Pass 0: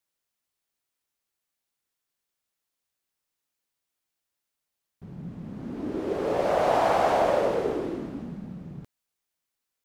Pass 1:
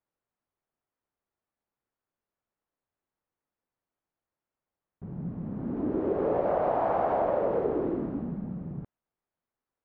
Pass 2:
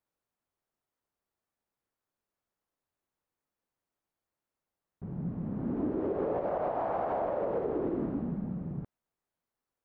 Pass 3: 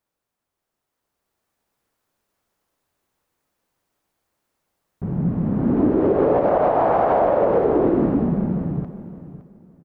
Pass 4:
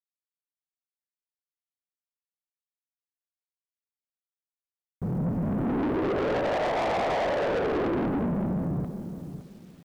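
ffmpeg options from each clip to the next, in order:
-af "lowpass=1200,acompressor=threshold=0.0501:ratio=6,volume=1.41"
-af "alimiter=limit=0.0708:level=0:latency=1:release=149"
-af "dynaudnorm=f=180:g=13:m=2.37,aecho=1:1:564|1128|1692:0.2|0.0479|0.0115,volume=2.11"
-af "acrusher=bits=9:mix=0:aa=0.000001,asoftclip=type=tanh:threshold=0.0596"

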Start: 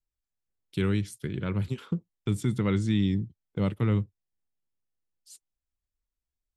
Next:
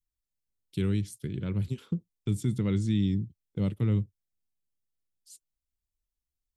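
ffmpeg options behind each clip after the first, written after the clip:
-af "equalizer=f=1200:w=0.5:g=-10.5"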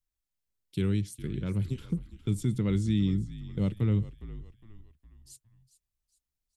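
-filter_complex "[0:a]asplit=5[s0][s1][s2][s3][s4];[s1]adelay=410,afreqshift=-58,volume=0.178[s5];[s2]adelay=820,afreqshift=-116,volume=0.0767[s6];[s3]adelay=1230,afreqshift=-174,volume=0.0327[s7];[s4]adelay=1640,afreqshift=-232,volume=0.0141[s8];[s0][s5][s6][s7][s8]amix=inputs=5:normalize=0"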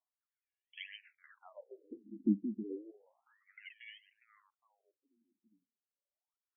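-af "highpass=170,lowpass=5800,aphaser=in_gain=1:out_gain=1:delay=1.8:decay=0.75:speed=0.91:type=sinusoidal,afftfilt=real='re*between(b*sr/1024,250*pow(2400/250,0.5+0.5*sin(2*PI*0.32*pts/sr))/1.41,250*pow(2400/250,0.5+0.5*sin(2*PI*0.32*pts/sr))*1.41)':imag='im*between(b*sr/1024,250*pow(2400/250,0.5+0.5*sin(2*PI*0.32*pts/sr))/1.41,250*pow(2400/250,0.5+0.5*sin(2*PI*0.32*pts/sr))*1.41)':win_size=1024:overlap=0.75,volume=0.794"

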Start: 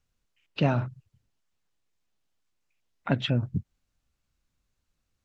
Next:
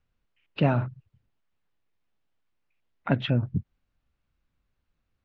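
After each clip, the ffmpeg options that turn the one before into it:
-af "lowpass=3000,volume=1.19"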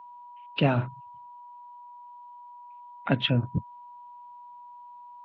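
-filter_complex "[0:a]equalizer=f=3200:w=1.7:g=7.5,aeval=exprs='val(0)+0.00631*sin(2*PI*970*n/s)':c=same,acrossover=split=110[s0][s1];[s0]acrusher=bits=4:mix=0:aa=0.5[s2];[s2][s1]amix=inputs=2:normalize=0"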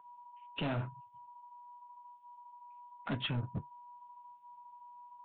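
-af "aresample=8000,asoftclip=type=hard:threshold=0.0596,aresample=44100,flanger=delay=6.7:depth=5:regen=-57:speed=0.91:shape=sinusoidal,volume=0.708"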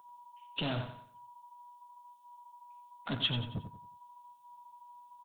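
-af "aexciter=amount=3.3:drive=7.3:freq=3300,aecho=1:1:91|182|273|364:0.355|0.128|0.046|0.0166"

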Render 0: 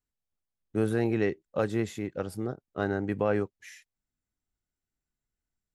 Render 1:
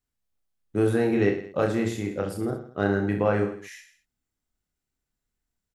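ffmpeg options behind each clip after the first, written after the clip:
-af "aecho=1:1:30|66|109.2|161|223.2:0.631|0.398|0.251|0.158|0.1,volume=1.33"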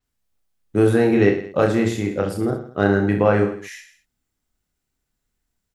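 -af "adynamicequalizer=threshold=0.00224:dfrequency=7600:dqfactor=0.7:tfrequency=7600:tqfactor=0.7:attack=5:release=100:ratio=0.375:range=2.5:mode=cutabove:tftype=highshelf,volume=2.11"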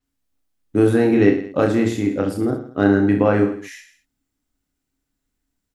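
-af "equalizer=f=280:w=6.5:g=14.5,volume=0.891"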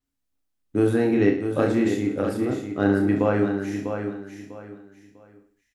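-af "aecho=1:1:648|1296|1944:0.422|0.114|0.0307,volume=0.562"

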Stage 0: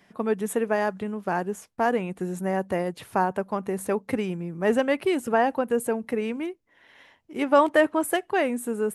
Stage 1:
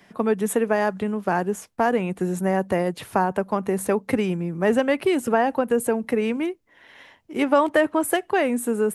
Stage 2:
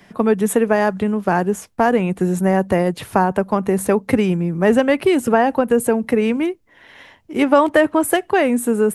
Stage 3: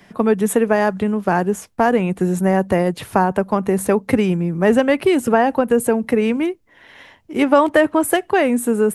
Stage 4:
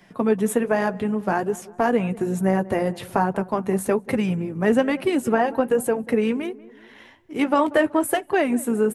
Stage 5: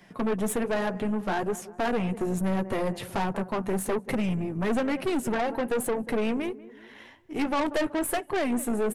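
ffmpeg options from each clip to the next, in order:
-filter_complex "[0:a]acrossover=split=180[s0][s1];[s1]acompressor=threshold=0.0631:ratio=2[s2];[s0][s2]amix=inputs=2:normalize=0,volume=1.88"
-af "lowshelf=f=150:g=6.5,volume=1.68"
-af anull
-filter_complex "[0:a]tremolo=f=56:d=0.261,flanger=delay=5.3:depth=4.7:regen=-39:speed=1.2:shape=triangular,asplit=2[s0][s1];[s1]adelay=188,lowpass=f=1400:p=1,volume=0.112,asplit=2[s2][s3];[s3]adelay=188,lowpass=f=1400:p=1,volume=0.51,asplit=2[s4][s5];[s5]adelay=188,lowpass=f=1400:p=1,volume=0.51,asplit=2[s6][s7];[s7]adelay=188,lowpass=f=1400:p=1,volume=0.51[s8];[s0][s2][s4][s6][s8]amix=inputs=5:normalize=0"
-af "aeval=exprs='(tanh(14.1*val(0)+0.4)-tanh(0.4))/14.1':c=same"

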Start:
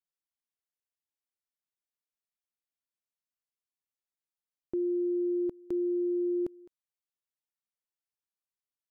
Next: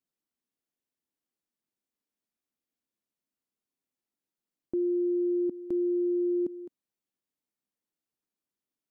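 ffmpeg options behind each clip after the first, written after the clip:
-af "equalizer=f=260:t=o:w=1.7:g=15,alimiter=limit=0.0631:level=0:latency=1:release=33"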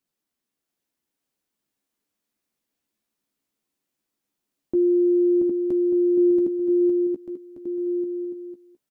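-filter_complex "[0:a]asplit=2[s0][s1];[s1]adelay=14,volume=0.398[s2];[s0][s2]amix=inputs=2:normalize=0,asplit=2[s3][s4];[s4]aecho=0:1:680|1190|1572|1859|2075:0.631|0.398|0.251|0.158|0.1[s5];[s3][s5]amix=inputs=2:normalize=0,volume=2"

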